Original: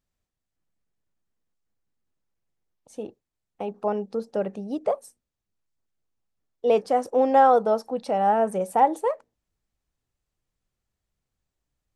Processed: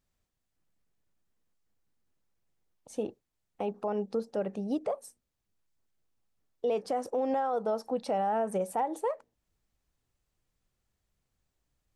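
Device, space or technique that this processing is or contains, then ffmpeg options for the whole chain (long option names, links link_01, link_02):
stacked limiters: -af "alimiter=limit=-11dB:level=0:latency=1:release=344,alimiter=limit=-17.5dB:level=0:latency=1:release=114,alimiter=limit=-24dB:level=0:latency=1:release=425,volume=2dB"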